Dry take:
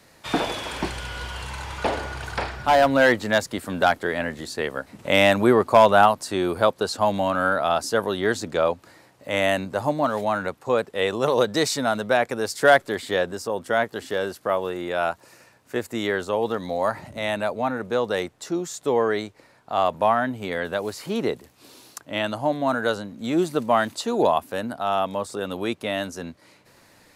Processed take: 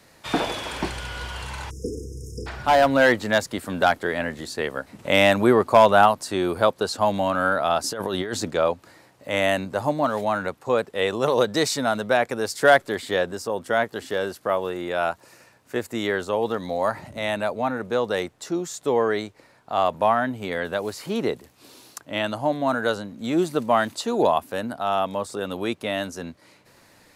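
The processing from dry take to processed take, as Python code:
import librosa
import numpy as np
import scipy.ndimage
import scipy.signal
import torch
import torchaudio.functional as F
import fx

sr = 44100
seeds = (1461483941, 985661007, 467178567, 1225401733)

y = fx.spec_erase(x, sr, start_s=1.7, length_s=0.77, low_hz=500.0, high_hz=5000.0)
y = fx.over_compress(y, sr, threshold_db=-27.0, ratio=-1.0, at=(7.84, 8.5))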